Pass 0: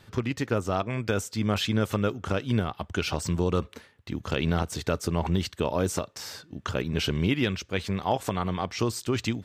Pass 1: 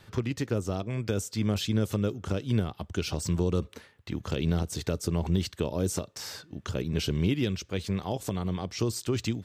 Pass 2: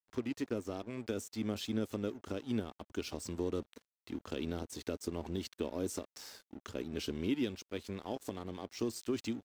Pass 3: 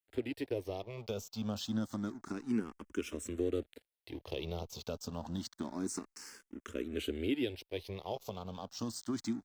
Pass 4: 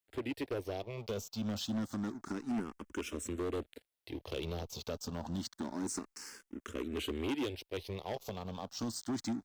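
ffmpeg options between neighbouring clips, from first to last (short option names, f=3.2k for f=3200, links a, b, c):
-filter_complex "[0:a]equalizer=f=250:w=5.1:g=-3,acrossover=split=510|3600[a][b][c];[b]acompressor=threshold=-41dB:ratio=6[d];[a][d][c]amix=inputs=3:normalize=0"
-af "lowshelf=f=200:t=q:w=3:g=-6,aeval=exprs='sgn(val(0))*max(abs(val(0))-0.00501,0)':c=same,volume=-7.5dB"
-filter_complex "[0:a]asplit=2[a][b];[b]afreqshift=0.28[c];[a][c]amix=inputs=2:normalize=1,volume=3dB"
-af "asoftclip=type=hard:threshold=-33.5dB,volume=2dB"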